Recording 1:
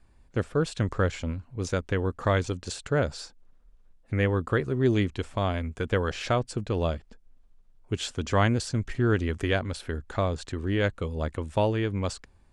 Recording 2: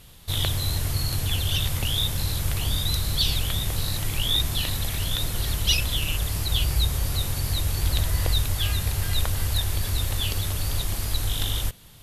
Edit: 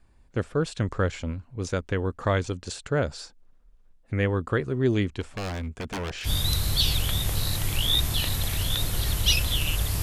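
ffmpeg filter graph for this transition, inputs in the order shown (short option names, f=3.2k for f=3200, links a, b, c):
-filter_complex "[0:a]asplit=3[a][b][c];[a]afade=t=out:st=5.2:d=0.02[d];[b]aeval=exprs='0.0501*(abs(mod(val(0)/0.0501+3,4)-2)-1)':c=same,afade=t=in:st=5.2:d=0.02,afade=t=out:st=6.29:d=0.02[e];[c]afade=t=in:st=6.29:d=0.02[f];[d][e][f]amix=inputs=3:normalize=0,apad=whole_dur=10.02,atrim=end=10.02,atrim=end=6.29,asetpts=PTS-STARTPTS[g];[1:a]atrim=start=2.64:end=6.43,asetpts=PTS-STARTPTS[h];[g][h]acrossfade=d=0.06:c1=tri:c2=tri"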